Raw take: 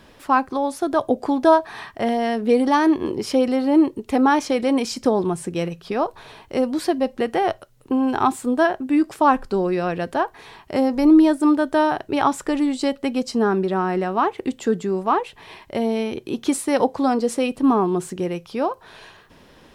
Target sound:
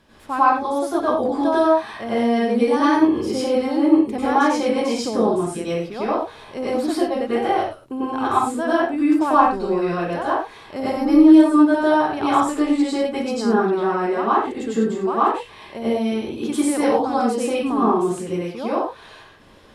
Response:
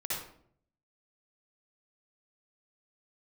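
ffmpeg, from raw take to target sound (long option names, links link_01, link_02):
-filter_complex "[1:a]atrim=start_sample=2205,afade=type=out:start_time=0.18:duration=0.01,atrim=end_sample=8379,asetrate=26460,aresample=44100[link_01];[0:a][link_01]afir=irnorm=-1:irlink=0,volume=-6.5dB"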